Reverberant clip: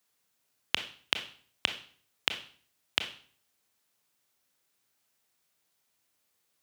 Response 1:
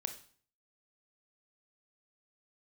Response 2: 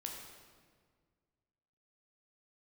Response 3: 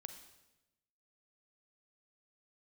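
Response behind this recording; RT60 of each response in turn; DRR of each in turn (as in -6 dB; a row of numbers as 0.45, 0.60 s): 1; 0.50, 1.7, 1.0 s; 6.5, 0.0, 7.0 dB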